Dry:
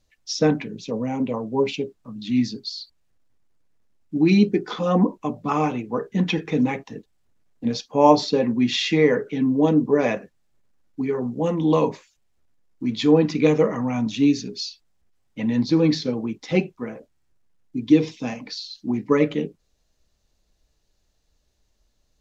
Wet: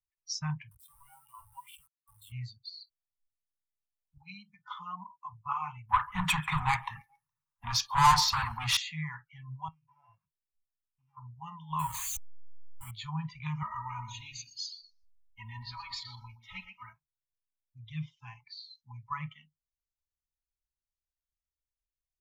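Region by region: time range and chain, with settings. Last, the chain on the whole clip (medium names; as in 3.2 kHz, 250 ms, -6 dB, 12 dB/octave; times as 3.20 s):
0.71–2.32 s: bass shelf 250 Hz -9 dB + compression 2.5:1, threshold -34 dBFS + small samples zeroed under -38 dBFS
4.17–5.33 s: high-pass 140 Hz 6 dB/octave + compression 5:1, threshold -20 dBFS
5.89–8.77 s: treble shelf 2.7 kHz -8.5 dB + overdrive pedal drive 29 dB, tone 6.4 kHz, clips at -2 dBFS + feedback delay 139 ms, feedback 52%, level -23 dB
9.68–11.17 s: sorted samples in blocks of 16 samples + low-pass 1.1 kHz + compression 2.5:1, threshold -35 dBFS
11.79–12.91 s: jump at every zero crossing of -25.5 dBFS + treble shelf 5.2 kHz +6 dB
13.62–16.93 s: comb 3.2 ms, depth 98% + feedback delay 121 ms, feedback 26%, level -7.5 dB
whole clip: Chebyshev band-stop 150–930 Hz, order 4; spectral noise reduction 23 dB; high-order bell 2.6 kHz -9 dB; trim -5 dB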